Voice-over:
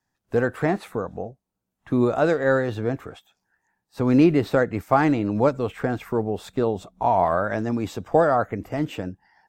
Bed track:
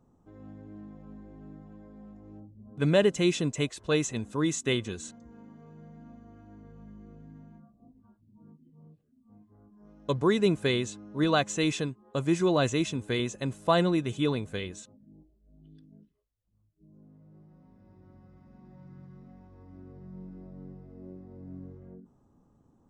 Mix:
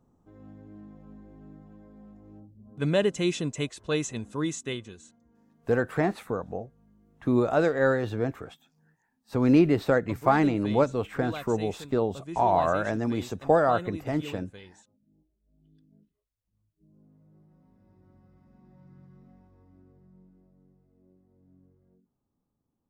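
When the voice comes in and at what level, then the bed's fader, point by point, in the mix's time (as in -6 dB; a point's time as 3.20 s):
5.35 s, -3.0 dB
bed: 4.42 s -1.5 dB
5.17 s -13 dB
15.00 s -13 dB
16.24 s -4 dB
19.34 s -4 dB
20.62 s -17 dB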